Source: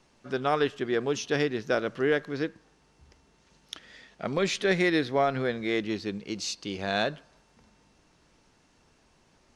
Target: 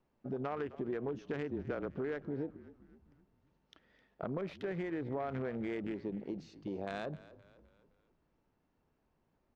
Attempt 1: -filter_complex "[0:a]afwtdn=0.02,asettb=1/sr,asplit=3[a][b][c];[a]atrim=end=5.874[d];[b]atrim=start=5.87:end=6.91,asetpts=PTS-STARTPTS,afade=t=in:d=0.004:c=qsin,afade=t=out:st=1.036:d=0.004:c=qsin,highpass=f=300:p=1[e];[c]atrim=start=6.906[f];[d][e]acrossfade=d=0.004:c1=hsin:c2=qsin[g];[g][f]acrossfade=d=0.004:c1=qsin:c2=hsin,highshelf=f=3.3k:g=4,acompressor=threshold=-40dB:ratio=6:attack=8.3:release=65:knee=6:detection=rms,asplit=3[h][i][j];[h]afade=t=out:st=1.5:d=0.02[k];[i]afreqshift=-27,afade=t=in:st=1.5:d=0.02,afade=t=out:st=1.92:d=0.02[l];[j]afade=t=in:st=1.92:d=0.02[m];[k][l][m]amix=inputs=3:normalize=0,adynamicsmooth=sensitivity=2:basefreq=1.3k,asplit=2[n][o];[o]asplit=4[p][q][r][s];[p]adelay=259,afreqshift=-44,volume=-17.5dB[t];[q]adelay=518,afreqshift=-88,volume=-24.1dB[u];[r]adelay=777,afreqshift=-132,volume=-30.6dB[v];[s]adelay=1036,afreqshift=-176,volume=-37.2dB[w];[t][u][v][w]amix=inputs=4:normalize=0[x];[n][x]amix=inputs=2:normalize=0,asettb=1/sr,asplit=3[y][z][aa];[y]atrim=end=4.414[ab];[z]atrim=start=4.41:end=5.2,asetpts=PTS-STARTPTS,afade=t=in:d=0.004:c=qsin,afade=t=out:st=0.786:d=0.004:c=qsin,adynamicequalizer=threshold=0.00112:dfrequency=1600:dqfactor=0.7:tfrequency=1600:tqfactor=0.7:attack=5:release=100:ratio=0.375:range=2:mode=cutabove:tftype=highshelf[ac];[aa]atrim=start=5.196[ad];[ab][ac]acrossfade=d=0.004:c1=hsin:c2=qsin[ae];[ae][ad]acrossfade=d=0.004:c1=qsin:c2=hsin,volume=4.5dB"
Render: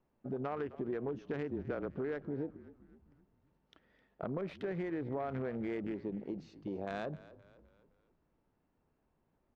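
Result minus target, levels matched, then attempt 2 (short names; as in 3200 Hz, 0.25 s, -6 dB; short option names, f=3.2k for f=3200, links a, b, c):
4000 Hz band -2.5 dB
-filter_complex "[0:a]afwtdn=0.02,asettb=1/sr,asplit=3[a][b][c];[a]atrim=end=5.874[d];[b]atrim=start=5.87:end=6.91,asetpts=PTS-STARTPTS,afade=t=in:d=0.004:c=qsin,afade=t=out:st=1.036:d=0.004:c=qsin,highpass=f=300:p=1[e];[c]atrim=start=6.906[f];[d][e]acrossfade=d=0.004:c1=hsin:c2=qsin[g];[g][f]acrossfade=d=0.004:c1=qsin:c2=hsin,highshelf=f=3.3k:g=12,acompressor=threshold=-40dB:ratio=6:attack=8.3:release=65:knee=6:detection=rms,asplit=3[h][i][j];[h]afade=t=out:st=1.5:d=0.02[k];[i]afreqshift=-27,afade=t=in:st=1.5:d=0.02,afade=t=out:st=1.92:d=0.02[l];[j]afade=t=in:st=1.92:d=0.02[m];[k][l][m]amix=inputs=3:normalize=0,adynamicsmooth=sensitivity=2:basefreq=1.3k,asplit=2[n][o];[o]asplit=4[p][q][r][s];[p]adelay=259,afreqshift=-44,volume=-17.5dB[t];[q]adelay=518,afreqshift=-88,volume=-24.1dB[u];[r]adelay=777,afreqshift=-132,volume=-30.6dB[v];[s]adelay=1036,afreqshift=-176,volume=-37.2dB[w];[t][u][v][w]amix=inputs=4:normalize=0[x];[n][x]amix=inputs=2:normalize=0,asettb=1/sr,asplit=3[y][z][aa];[y]atrim=end=4.414[ab];[z]atrim=start=4.41:end=5.2,asetpts=PTS-STARTPTS,afade=t=in:d=0.004:c=qsin,afade=t=out:st=0.786:d=0.004:c=qsin,adynamicequalizer=threshold=0.00112:dfrequency=1600:dqfactor=0.7:tfrequency=1600:tqfactor=0.7:attack=5:release=100:ratio=0.375:range=2:mode=cutabove:tftype=highshelf[ac];[aa]atrim=start=5.196[ad];[ab][ac]acrossfade=d=0.004:c1=hsin:c2=qsin[ae];[ae][ad]acrossfade=d=0.004:c1=qsin:c2=hsin,volume=4.5dB"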